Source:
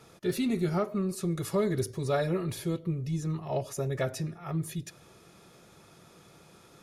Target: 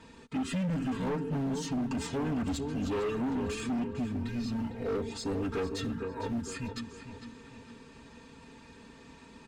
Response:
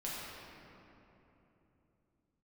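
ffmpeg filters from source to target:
-filter_complex "[0:a]asplit=2[s0][s1];[s1]acrusher=bits=4:mode=log:mix=0:aa=0.000001,volume=0.316[s2];[s0][s2]amix=inputs=2:normalize=0,asetrate=31752,aresample=44100,equalizer=f=690:w=3.3:g=-9.5,aecho=1:1:4.4:0.79,acompressor=threshold=0.0631:ratio=3,asplit=2[s3][s4];[s4]adelay=453,lowpass=f=3500:p=1,volume=0.355,asplit=2[s5][s6];[s6]adelay=453,lowpass=f=3500:p=1,volume=0.43,asplit=2[s7][s8];[s8]adelay=453,lowpass=f=3500:p=1,volume=0.43,asplit=2[s9][s10];[s10]adelay=453,lowpass=f=3500:p=1,volume=0.43,asplit=2[s11][s12];[s12]adelay=453,lowpass=f=3500:p=1,volume=0.43[s13];[s5][s7][s9][s11][s13]amix=inputs=5:normalize=0[s14];[s3][s14]amix=inputs=2:normalize=0,volume=28.2,asoftclip=hard,volume=0.0355,aemphasis=mode=reproduction:type=cd"

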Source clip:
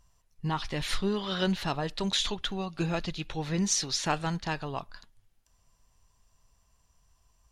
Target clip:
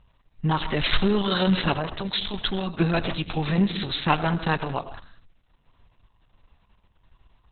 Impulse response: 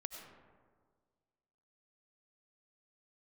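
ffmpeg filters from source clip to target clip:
-filter_complex "[0:a]asettb=1/sr,asplit=3[s0][s1][s2];[s0]atrim=end=1.784[s3];[s1]atrim=start=1.78:end=2.34,asetpts=PTS-STARTPTS,afade=t=in:d=0.004:c=qsin,afade=t=out:st=0.556:d=0.004:c=qsin,acompressor=threshold=0.0224:ratio=10[s4];[s2]atrim=start=2.336[s5];[s3][s4]acrossfade=d=0.004:c1=hsin:c2=qsin[s6];[s6][s5]acrossfade=d=0.004:c1=qsin:c2=hsin,asplit=2[s7][s8];[1:a]atrim=start_sample=2205,afade=t=out:st=0.26:d=0.01,atrim=end_sample=11907[s9];[s8][s9]afir=irnorm=-1:irlink=0,volume=1.26[s10];[s7][s10]amix=inputs=2:normalize=0,volume=1.5" -ar 48000 -c:a libopus -b:a 6k

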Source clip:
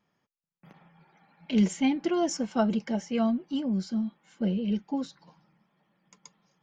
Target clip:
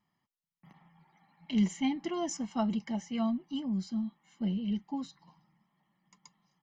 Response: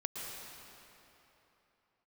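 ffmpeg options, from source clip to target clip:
-af "aecho=1:1:1:0.66,volume=0.473"

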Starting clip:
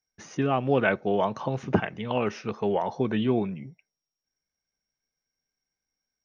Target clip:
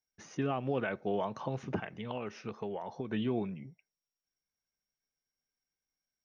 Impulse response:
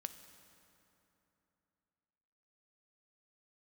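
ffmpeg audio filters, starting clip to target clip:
-filter_complex "[0:a]asettb=1/sr,asplit=3[s0][s1][s2];[s0]atrim=end=1.814[s3];[s1]atrim=start=1.81:end=3.12,asetpts=PTS-STARTPTS,afade=t=in:d=0.004:c=qsin,afade=t=out:st=1.306:d=0.004:c=qsin,acompressor=threshold=0.0355:ratio=5[s4];[s2]atrim=start=3.116[s5];[s3][s4]acrossfade=d=0.004:c1=hsin:c2=qsin[s6];[s6][s5]acrossfade=d=0.004:c1=qsin:c2=hsin,alimiter=limit=0.15:level=0:latency=1:release=132,volume=0.473"

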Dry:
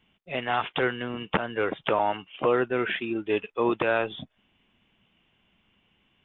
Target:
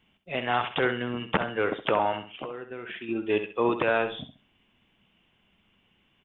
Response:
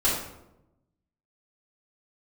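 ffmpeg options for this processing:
-filter_complex "[0:a]asettb=1/sr,asplit=3[s0][s1][s2];[s0]atrim=end=2.254[s3];[s1]atrim=start=2.25:end=3.09,asetpts=PTS-STARTPTS,afade=t=in:d=0.004:c=qsin,afade=t=out:st=0.836:d=0.004:c=qsin,acompressor=threshold=0.02:ratio=20[s4];[s2]atrim=start=3.086[s5];[s3][s4]acrossfade=d=0.004:c1=hsin:c2=qsin[s6];[s6][s5]acrossfade=d=0.004:c1=qsin:c2=hsin,asplit=2[s7][s8];[s8]aecho=0:1:66|132|198:0.316|0.0885|0.0248[s9];[s7][s9]amix=inputs=2:normalize=0"

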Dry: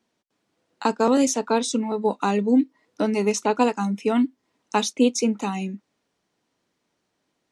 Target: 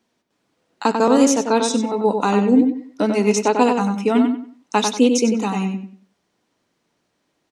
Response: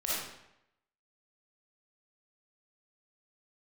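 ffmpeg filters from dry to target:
-filter_complex "[0:a]asplit=2[s0][s1];[s1]adelay=94,lowpass=f=3600:p=1,volume=0.562,asplit=2[s2][s3];[s3]adelay=94,lowpass=f=3600:p=1,volume=0.29,asplit=2[s4][s5];[s5]adelay=94,lowpass=f=3600:p=1,volume=0.29,asplit=2[s6][s7];[s7]adelay=94,lowpass=f=3600:p=1,volume=0.29[s8];[s0][s2][s4][s6][s8]amix=inputs=5:normalize=0,volume=1.5"

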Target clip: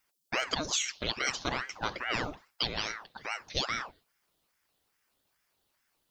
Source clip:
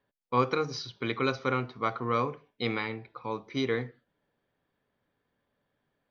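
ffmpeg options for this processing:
-af "aexciter=amount=6.7:drive=4.6:freq=3100,acompressor=threshold=0.0631:ratio=6,aeval=exprs='val(0)*sin(2*PI*990*n/s+990*0.85/2.4*sin(2*PI*2.4*n/s))':c=same"

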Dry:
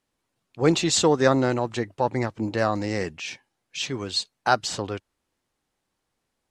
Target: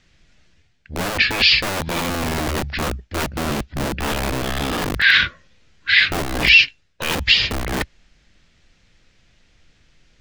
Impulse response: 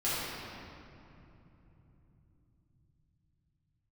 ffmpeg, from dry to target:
-filter_complex "[0:a]aemphasis=mode=reproduction:type=riaa,areverse,acompressor=threshold=0.0355:ratio=8,areverse,aexciter=amount=8.1:drive=1.9:freq=2400,asetrate=28092,aresample=44100,acrossover=split=1100[s0][s1];[s0]aeval=exprs='(mod(35.5*val(0)+1,2)-1)/35.5':c=same[s2];[s2][s1]amix=inputs=2:normalize=0,alimiter=level_in=5.01:limit=0.891:release=50:level=0:latency=1,volume=0.891"

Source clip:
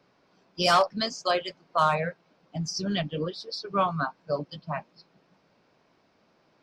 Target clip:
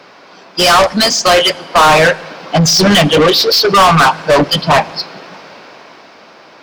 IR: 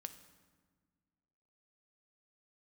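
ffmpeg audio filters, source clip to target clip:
-filter_complex "[0:a]dynaudnorm=f=250:g=13:m=3.76,asplit=2[s0][s1];[s1]highpass=f=720:p=1,volume=50.1,asoftclip=type=tanh:threshold=0.794[s2];[s0][s2]amix=inputs=2:normalize=0,lowpass=f=5500:p=1,volume=0.501,asplit=2[s3][s4];[1:a]atrim=start_sample=2205,atrim=end_sample=6615,asetrate=24255,aresample=44100[s5];[s4][s5]afir=irnorm=-1:irlink=0,volume=0.422[s6];[s3][s6]amix=inputs=2:normalize=0,volume=0.841"

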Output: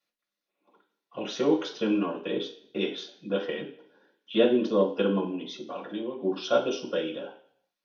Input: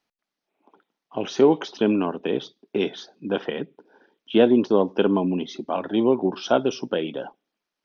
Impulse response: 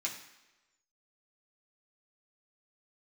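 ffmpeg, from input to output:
-filter_complex "[0:a]asettb=1/sr,asplit=3[s0][s1][s2];[s0]atrim=end=5.304[s3];[s1]atrim=start=5.3:end=6.22,asetpts=PTS-STARTPTS,afade=t=in:d=0.004:c=qsin,afade=t=out:st=0.916:d=0.004:c=qsin,acompressor=threshold=0.0447:ratio=3[s4];[s2]atrim=start=6.216[s5];[s3][s4]acrossfade=d=0.004:c1=hsin:c2=qsin[s6];[s6][s5]acrossfade=d=0.004:c1=qsin:c2=hsin[s7];[1:a]atrim=start_sample=2205,asetrate=74970,aresample=44100[s8];[s7][s8]afir=irnorm=-1:irlink=0"

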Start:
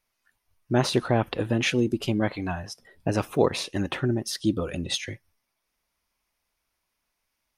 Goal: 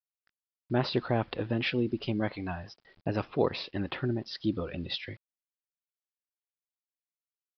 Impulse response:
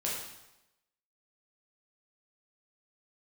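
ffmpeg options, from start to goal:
-af "acrusher=bits=8:mix=0:aa=0.000001,aresample=11025,aresample=44100,volume=0.531"

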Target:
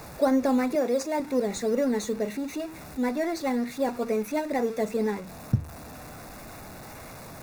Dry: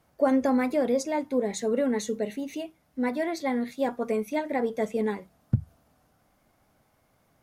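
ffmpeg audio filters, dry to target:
-filter_complex "[0:a]aeval=exprs='val(0)+0.5*0.0158*sgn(val(0))':c=same,asettb=1/sr,asplit=3[s0][s1][s2];[s0]atrim=end=0.754[s3];[s1]atrim=start=0.75:end=1.2,asetpts=PTS-STARTPTS,afade=t=in:d=0.004:c=qsin,afade=t=out:st=0.446:d=0.004:c=qsin,highpass=260[s4];[s2]atrim=start=1.196[s5];[s3][s4]acrossfade=d=0.004:c1=hsin:c2=qsin[s6];[s6][s5]acrossfade=d=0.004:c1=qsin:c2=hsin,asplit=2[s7][s8];[s8]acrusher=samples=10:mix=1:aa=0.000001:lfo=1:lforange=6:lforate=2.1,volume=0.355[s9];[s7][s9]amix=inputs=2:normalize=0,asuperstop=centerf=3100:order=4:qfactor=5.8,volume=0.708"

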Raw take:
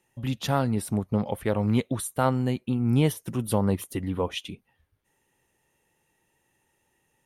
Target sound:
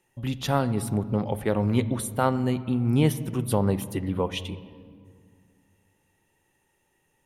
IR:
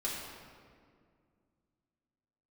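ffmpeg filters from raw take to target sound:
-filter_complex "[0:a]asplit=2[s0][s1];[1:a]atrim=start_sample=2205,lowpass=4400,lowshelf=f=150:g=12[s2];[s1][s2]afir=irnorm=-1:irlink=0,volume=0.158[s3];[s0][s3]amix=inputs=2:normalize=0"

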